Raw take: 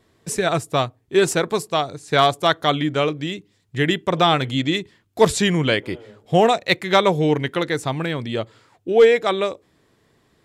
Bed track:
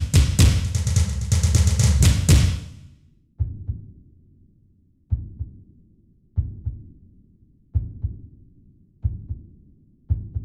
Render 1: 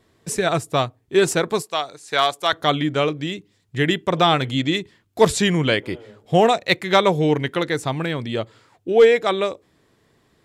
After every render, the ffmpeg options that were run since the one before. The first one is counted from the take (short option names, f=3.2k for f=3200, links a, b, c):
-filter_complex "[0:a]asettb=1/sr,asplit=3[a][b][c];[a]atrim=end=1.624[d];[b]atrim=start=1.62:end=2.53,asetpts=PTS-STARTPTS,afade=t=in:d=0.004:c=qsin,afade=t=out:st=0.906:d=0.004:c=qsin,highpass=f=840:p=1[e];[c]atrim=start=2.526[f];[d][e]acrossfade=d=0.004:c1=hsin:c2=qsin[g];[g][f]acrossfade=d=0.004:c1=qsin:c2=hsin"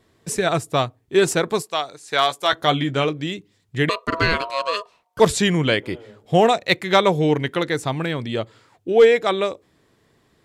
-filter_complex "[0:a]asettb=1/sr,asplit=3[a][b][c];[a]atrim=end=2.274[d];[b]atrim=start=2.27:end=3.05,asetpts=PTS-STARTPTS,afade=t=in:d=0.004:c=qsin,afade=t=out:st=0.776:d=0.004:c=qsin,asplit=2[e][f];[f]adelay=15,volume=-8.5dB[g];[e][g]amix=inputs=2:normalize=0,atrim=end_sample=34398[h];[c]atrim=start=3.046[i];[d][h]acrossfade=d=0.004:c1=hsin:c2=qsin[j];[j][i]acrossfade=d=0.004:c1=qsin:c2=hsin,asettb=1/sr,asplit=3[k][l][m];[k]atrim=end=3.894[n];[l]atrim=start=3.89:end=5.2,asetpts=PTS-STARTPTS,afade=t=in:d=0.004:c=qsin,afade=t=out:st=1.306:d=0.004:c=qsin,aeval=exprs='val(0)*sin(2*PI*820*n/s)':c=same[o];[m]atrim=start=5.196[p];[n][o]acrossfade=d=0.004:c1=hsin:c2=qsin[q];[q][p]acrossfade=d=0.004:c1=qsin:c2=hsin"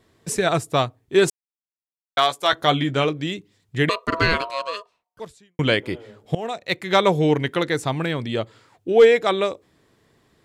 -filter_complex "[0:a]asplit=5[a][b][c][d][e];[a]atrim=end=1.3,asetpts=PTS-STARTPTS,afade=t=out:st=1.296:d=0.004:c=hsin[f];[b]atrim=start=1.3:end=2.17,asetpts=PTS-STARTPTS,volume=0[g];[c]atrim=start=2.17:end=5.59,asetpts=PTS-STARTPTS,afade=t=in:d=0.004:c=hsin,afade=t=out:st=2.21:d=1.21:c=qua[h];[d]atrim=start=5.59:end=6.35,asetpts=PTS-STARTPTS,afade=t=in:d=0.004:c=hsin,afade=t=out:st=0.756:d=0.004:c=hsin:silence=0.0841395[i];[e]atrim=start=6.35,asetpts=PTS-STARTPTS,afade=t=in:d=0.76:silence=0.0841395[j];[f][g][h][i][j]concat=n=5:v=0:a=1"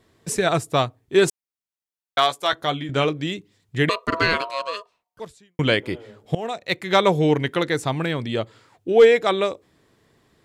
-filter_complex "[0:a]asettb=1/sr,asplit=3[a][b][c];[a]atrim=end=4.184[d];[b]atrim=start=4.18:end=4.6,asetpts=PTS-STARTPTS,afade=t=in:d=0.004:c=qsin,afade=t=out:st=0.416:d=0.004:c=qsin,lowshelf=f=110:g=-11[e];[c]atrim=start=4.596[f];[d][e]acrossfade=d=0.004:c1=hsin:c2=qsin[g];[g][f]acrossfade=d=0.004:c1=qsin:c2=hsin,asplit=2[h][i];[h]atrim=end=2.89,asetpts=PTS-STARTPTS,afade=t=out:st=2.25:d=0.64:silence=0.334965[j];[i]atrim=start=2.89,asetpts=PTS-STARTPTS,afade=t=in:d=0.004:c=hsin:silence=0.334965[k];[j][k]concat=n=2:v=0:a=1"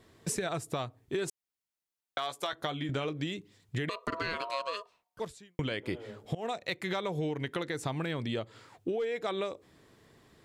-af "alimiter=limit=-15.5dB:level=0:latency=1:release=166,acompressor=threshold=-31dB:ratio=5"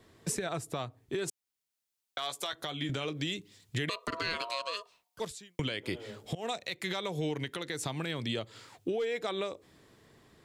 -filter_complex "[0:a]acrossover=split=160|2600[a][b][c];[c]dynaudnorm=f=500:g=7:m=8dB[d];[a][b][d]amix=inputs=3:normalize=0,alimiter=limit=-22dB:level=0:latency=1:release=206"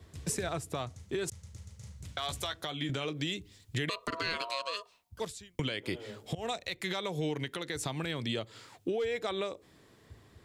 -filter_complex "[1:a]volume=-31dB[a];[0:a][a]amix=inputs=2:normalize=0"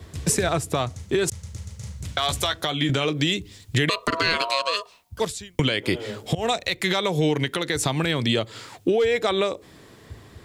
-af "volume=12dB"